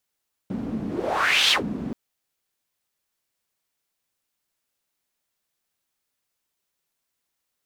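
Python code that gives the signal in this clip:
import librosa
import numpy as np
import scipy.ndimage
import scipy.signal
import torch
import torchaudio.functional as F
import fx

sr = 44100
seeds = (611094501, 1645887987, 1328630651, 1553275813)

y = fx.whoosh(sr, seeds[0], length_s=1.43, peak_s=1.01, rise_s=0.71, fall_s=0.13, ends_hz=230.0, peak_hz=3500.0, q=3.7, swell_db=11.0)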